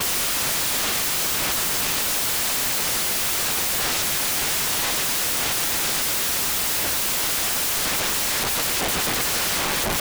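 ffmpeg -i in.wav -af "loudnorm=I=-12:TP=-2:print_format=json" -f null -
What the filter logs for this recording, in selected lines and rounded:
"input_i" : "-20.4",
"input_tp" : "-12.7",
"input_lra" : "0.3",
"input_thresh" : "-30.4",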